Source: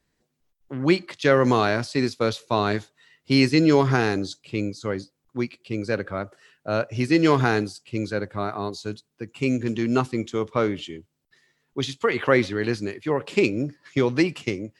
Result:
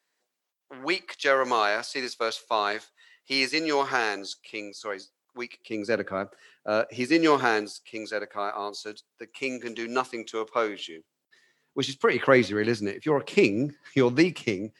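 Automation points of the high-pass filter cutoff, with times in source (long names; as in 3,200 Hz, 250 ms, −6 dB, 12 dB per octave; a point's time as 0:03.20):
0:05.39 630 Hz
0:06.05 170 Hz
0:07.96 520 Hz
0:10.80 520 Hz
0:12.06 130 Hz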